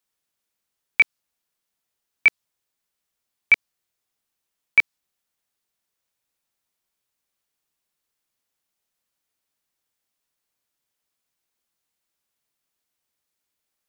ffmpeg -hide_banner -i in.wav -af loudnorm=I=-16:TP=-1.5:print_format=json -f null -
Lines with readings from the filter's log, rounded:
"input_i" : "-20.0",
"input_tp" : "-7.1",
"input_lra" : "4.7",
"input_thresh" : "-30.3",